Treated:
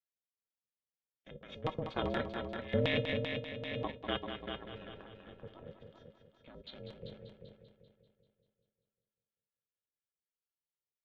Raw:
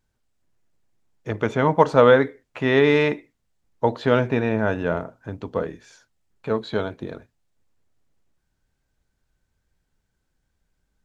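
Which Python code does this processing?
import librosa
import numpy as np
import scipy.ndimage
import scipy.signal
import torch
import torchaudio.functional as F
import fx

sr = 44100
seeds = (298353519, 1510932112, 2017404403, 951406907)

y = fx.median_filter(x, sr, points=41, at=(6.74, 7.16))
y = scipy.signal.sosfilt(scipy.signal.butter(2, 210.0, 'highpass', fs=sr, output='sos'), y)
y = fx.peak_eq(y, sr, hz=380.0, db=-2.0, octaves=1.9)
y = fx.level_steps(y, sr, step_db=20)
y = fx.filter_lfo_lowpass(y, sr, shape='square', hz=4.2, low_hz=300.0, high_hz=3200.0, q=5.1)
y = fx.comb_fb(y, sr, f0_hz=380.0, decay_s=0.18, harmonics='all', damping=0.0, mix_pct=80)
y = y * np.sin(2.0 * np.pi * 170.0 * np.arange(len(y)) / sr)
y = fx.echo_heads(y, sr, ms=195, heads='first and second', feedback_pct=43, wet_db=-8)
y = fx.pre_swell(y, sr, db_per_s=29.0, at=(3.07, 3.9), fade=0.02)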